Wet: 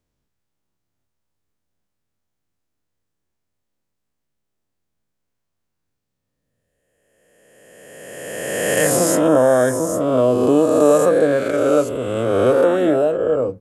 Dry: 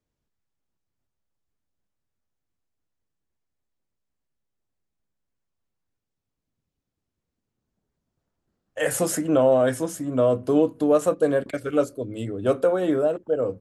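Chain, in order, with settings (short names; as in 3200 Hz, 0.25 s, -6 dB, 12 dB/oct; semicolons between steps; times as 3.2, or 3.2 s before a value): spectral swells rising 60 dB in 2.12 s; 9.28–10.01 band shelf 3100 Hz -9 dB 1.3 oct; gain +2.5 dB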